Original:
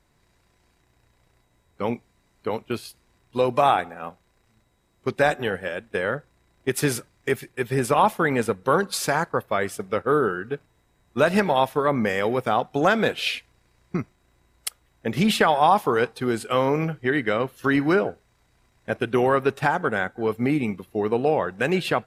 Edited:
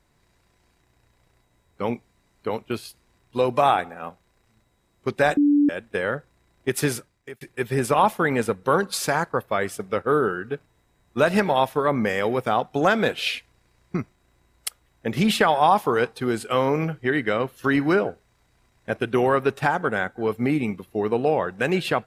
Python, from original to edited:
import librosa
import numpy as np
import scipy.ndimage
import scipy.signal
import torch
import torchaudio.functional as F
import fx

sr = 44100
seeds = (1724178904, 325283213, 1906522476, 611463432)

y = fx.edit(x, sr, fx.bleep(start_s=5.37, length_s=0.32, hz=290.0, db=-14.0),
    fx.fade_out_span(start_s=6.83, length_s=0.58), tone=tone)